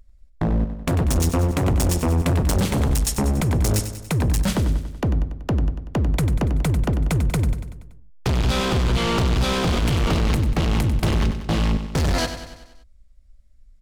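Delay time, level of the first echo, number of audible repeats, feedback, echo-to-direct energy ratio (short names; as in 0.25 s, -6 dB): 95 ms, -10.0 dB, 5, 56%, -8.5 dB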